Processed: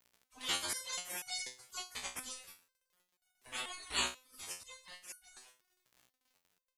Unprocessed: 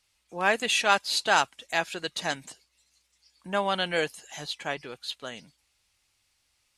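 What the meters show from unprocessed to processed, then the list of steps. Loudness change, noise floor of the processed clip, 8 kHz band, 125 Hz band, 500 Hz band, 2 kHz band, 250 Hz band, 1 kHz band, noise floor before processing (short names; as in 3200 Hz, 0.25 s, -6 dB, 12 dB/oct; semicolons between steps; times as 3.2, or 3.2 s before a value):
-12.0 dB, under -85 dBFS, -4.0 dB, -18.5 dB, -23.5 dB, -16.0 dB, -18.0 dB, -19.5 dB, -73 dBFS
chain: spectral gate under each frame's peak -25 dB weak; crackle 36/s -56 dBFS; stepped resonator 4.1 Hz 62–740 Hz; gain +17 dB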